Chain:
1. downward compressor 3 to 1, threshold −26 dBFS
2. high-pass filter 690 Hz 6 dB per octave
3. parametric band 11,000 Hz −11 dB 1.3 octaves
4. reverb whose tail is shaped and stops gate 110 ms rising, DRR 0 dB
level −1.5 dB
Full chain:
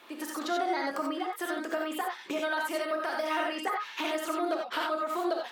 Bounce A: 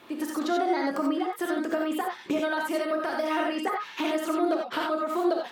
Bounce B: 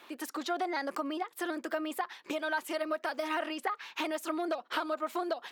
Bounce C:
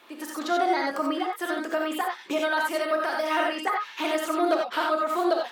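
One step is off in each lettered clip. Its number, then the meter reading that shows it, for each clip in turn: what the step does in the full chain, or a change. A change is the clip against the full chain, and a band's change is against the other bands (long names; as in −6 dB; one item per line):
2, 250 Hz band +7.0 dB
4, change in crest factor +2.5 dB
1, average gain reduction 4.0 dB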